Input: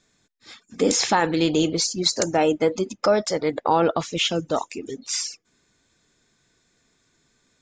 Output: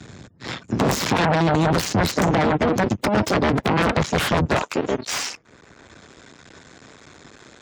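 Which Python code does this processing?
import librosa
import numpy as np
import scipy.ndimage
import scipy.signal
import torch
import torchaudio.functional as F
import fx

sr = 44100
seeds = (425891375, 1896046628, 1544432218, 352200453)

y = fx.cycle_switch(x, sr, every=2, mode='muted')
y = fx.over_compress(y, sr, threshold_db=-24.0, ratio=-0.5)
y = fx.spec_gate(y, sr, threshold_db=-30, keep='strong')
y = fx.peak_eq(y, sr, hz=110.0, db=fx.steps((0.0, 11.0), (4.54, -3.0)), octaves=2.9)
y = fx.fold_sine(y, sr, drive_db=15, ceiling_db=-6.0)
y = scipy.signal.sosfilt(scipy.signal.butter(2, 60.0, 'highpass', fs=sr, output='sos'), y)
y = fx.high_shelf(y, sr, hz=3600.0, db=-10.0)
y = fx.band_squash(y, sr, depth_pct=40)
y = y * librosa.db_to_amplitude(-6.5)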